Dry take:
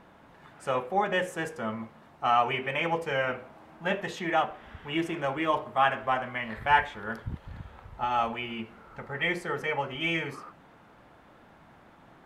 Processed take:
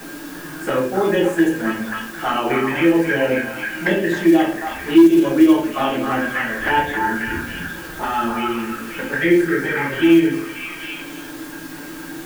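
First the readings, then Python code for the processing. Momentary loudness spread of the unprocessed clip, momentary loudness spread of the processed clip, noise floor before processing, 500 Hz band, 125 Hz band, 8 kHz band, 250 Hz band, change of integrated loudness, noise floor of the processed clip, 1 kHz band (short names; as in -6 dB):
15 LU, 17 LU, -56 dBFS, +12.5 dB, +9.0 dB, n/a, +21.0 dB, +11.0 dB, -33 dBFS, +4.5 dB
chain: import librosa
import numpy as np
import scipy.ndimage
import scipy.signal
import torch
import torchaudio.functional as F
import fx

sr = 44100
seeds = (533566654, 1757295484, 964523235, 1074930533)

p1 = fx.high_shelf(x, sr, hz=5700.0, db=9.0)
p2 = fx.hum_notches(p1, sr, base_hz=60, count=8)
p3 = fx.small_body(p2, sr, hz=(300.0, 1600.0), ring_ms=30, db=18)
p4 = fx.env_flanger(p3, sr, rest_ms=8.0, full_db=-17.0)
p5 = fx.quant_dither(p4, sr, seeds[0], bits=8, dither='triangular')
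p6 = fx.room_shoebox(p5, sr, seeds[1], volume_m3=45.0, walls='mixed', distance_m=0.93)
p7 = fx.quant_float(p6, sr, bits=4)
p8 = p7 + fx.echo_stepped(p7, sr, ms=268, hz=1200.0, octaves=0.7, feedback_pct=70, wet_db=-3.0, dry=0)
y = fx.band_squash(p8, sr, depth_pct=40)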